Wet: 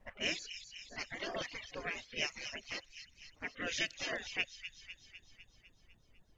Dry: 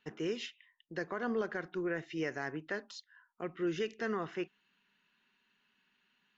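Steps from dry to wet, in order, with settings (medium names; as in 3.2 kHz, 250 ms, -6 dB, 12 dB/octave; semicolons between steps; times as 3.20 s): pre-echo 59 ms -20 dB; level-controlled noise filter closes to 530 Hz, open at -30.5 dBFS; spectral gate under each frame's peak -20 dB weak; high-order bell 1.1 kHz -9 dB 1.1 oct; added noise brown -77 dBFS; on a send: feedback echo behind a high-pass 251 ms, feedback 61%, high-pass 2.9 kHz, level -6 dB; on the sum: reverb removal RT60 0.74 s; trim +14 dB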